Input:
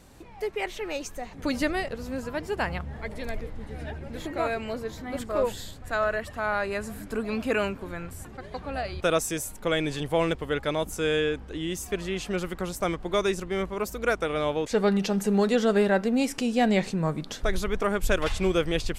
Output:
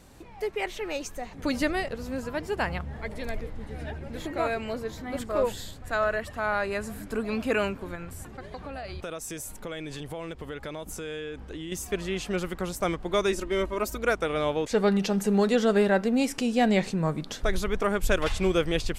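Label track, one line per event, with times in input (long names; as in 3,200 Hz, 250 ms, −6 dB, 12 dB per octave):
7.950000	11.720000	downward compressor, threshold −33 dBFS
13.320000	13.970000	comb filter 3.2 ms, depth 76%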